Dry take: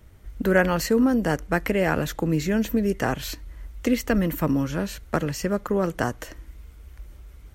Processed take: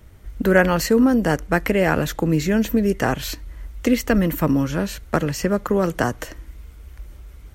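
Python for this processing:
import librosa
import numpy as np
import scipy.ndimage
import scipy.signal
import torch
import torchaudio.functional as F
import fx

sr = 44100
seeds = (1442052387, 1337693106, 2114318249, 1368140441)

y = fx.band_squash(x, sr, depth_pct=40, at=(5.38, 6.25))
y = F.gain(torch.from_numpy(y), 4.0).numpy()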